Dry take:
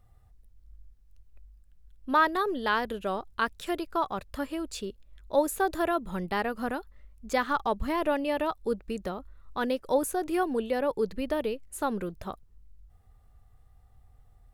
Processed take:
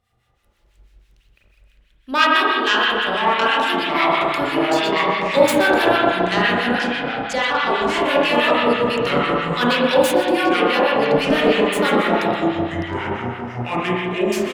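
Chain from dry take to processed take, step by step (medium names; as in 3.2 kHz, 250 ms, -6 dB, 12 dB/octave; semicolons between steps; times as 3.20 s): tracing distortion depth 0.067 ms; frequency weighting D; ever faster or slower copies 126 ms, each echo -6 st, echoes 2, each echo -6 dB; feedback delay 122 ms, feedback 37%, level -13.5 dB; level rider gain up to 10 dB; 6.02–8.04 s: low-pass 11 kHz 24 dB/octave; spring tank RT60 2.3 s, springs 33/42 ms, chirp 70 ms, DRR -6 dB; harmonic tremolo 6.1 Hz, depth 70%, crossover 1.2 kHz; trim -1 dB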